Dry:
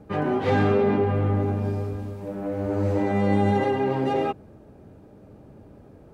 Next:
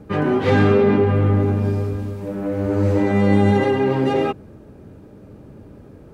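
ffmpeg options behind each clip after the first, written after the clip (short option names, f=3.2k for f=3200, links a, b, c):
-af "equalizer=f=730:w=2.2:g=-6,volume=6.5dB"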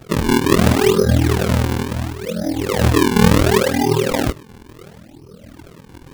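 -af "afftfilt=real='re*pow(10,22/40*sin(2*PI*(0.69*log(max(b,1)*sr/1024/100)/log(2)-(2.3)*(pts-256)/sr)))':imag='im*pow(10,22/40*sin(2*PI*(0.69*log(max(b,1)*sr/1024/100)/log(2)-(2.3)*(pts-256)/sr)))':win_size=1024:overlap=0.75,aeval=exprs='val(0)*sin(2*PI*20*n/s)':c=same,acrusher=samples=39:mix=1:aa=0.000001:lfo=1:lforange=62.4:lforate=0.71"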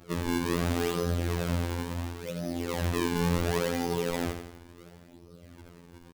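-af "asoftclip=type=tanh:threshold=-11.5dB,aecho=1:1:84|168|252|336|420|504:0.398|0.207|0.108|0.056|0.0291|0.0151,afftfilt=real='hypot(re,im)*cos(PI*b)':imag='0':win_size=2048:overlap=0.75,volume=-8dB"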